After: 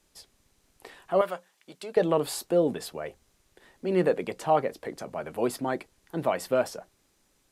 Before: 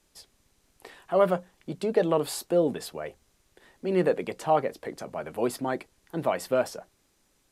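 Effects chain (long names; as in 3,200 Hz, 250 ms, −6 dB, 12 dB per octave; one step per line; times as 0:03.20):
0:01.21–0:01.97: high-pass filter 1,400 Hz 6 dB per octave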